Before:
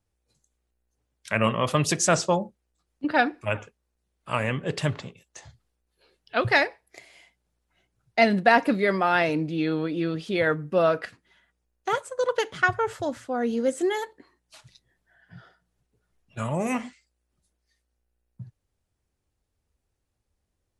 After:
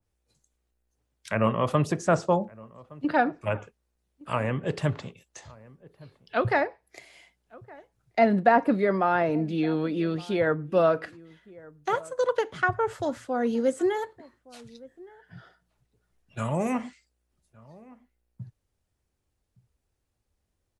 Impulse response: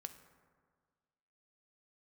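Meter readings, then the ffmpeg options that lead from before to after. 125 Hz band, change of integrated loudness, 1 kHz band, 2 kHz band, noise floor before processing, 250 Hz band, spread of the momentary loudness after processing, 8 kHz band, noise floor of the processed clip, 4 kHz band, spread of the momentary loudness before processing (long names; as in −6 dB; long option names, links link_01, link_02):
0.0 dB, −1.5 dB, −0.5 dB, −5.5 dB, −78 dBFS, 0.0 dB, 10 LU, below −10 dB, −78 dBFS, −9.0 dB, 11 LU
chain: -filter_complex "[0:a]acrossover=split=520|1600[link_01][link_02][link_03];[link_03]acompressor=threshold=-40dB:ratio=5[link_04];[link_01][link_02][link_04]amix=inputs=3:normalize=0,asplit=2[link_05][link_06];[link_06]adelay=1166,volume=-22dB,highshelf=frequency=4000:gain=-26.2[link_07];[link_05][link_07]amix=inputs=2:normalize=0,adynamicequalizer=threshold=0.0141:dfrequency=1800:dqfactor=0.7:tfrequency=1800:tqfactor=0.7:attack=5:release=100:ratio=0.375:range=2:mode=cutabove:tftype=highshelf"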